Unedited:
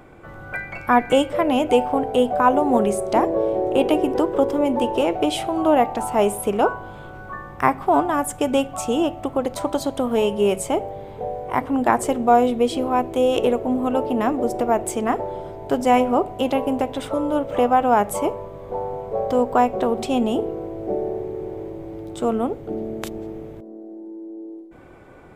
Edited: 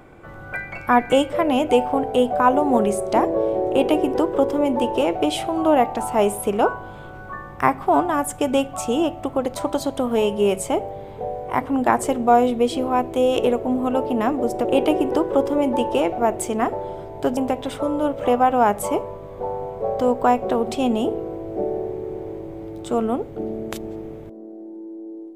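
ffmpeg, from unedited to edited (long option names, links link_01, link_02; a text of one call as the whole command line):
ffmpeg -i in.wav -filter_complex "[0:a]asplit=4[link_01][link_02][link_03][link_04];[link_01]atrim=end=14.652[link_05];[link_02]atrim=start=3.678:end=5.212[link_06];[link_03]atrim=start=14.648:end=15.842[link_07];[link_04]atrim=start=16.678[link_08];[link_05][link_06]acrossfade=duration=0.004:curve1=hsin:curve2=hsin[link_09];[link_09][link_07]acrossfade=duration=0.004:curve1=hsin:curve2=hsin[link_10];[link_10][link_08]acrossfade=duration=0.004:curve1=hsin:curve2=hsin" out.wav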